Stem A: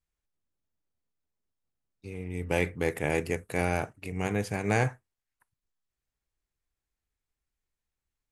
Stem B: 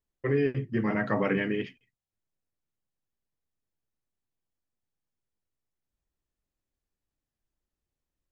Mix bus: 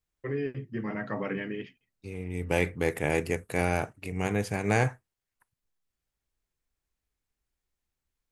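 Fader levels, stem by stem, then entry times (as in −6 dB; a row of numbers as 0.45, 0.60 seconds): +1.0, −6.0 decibels; 0.00, 0.00 seconds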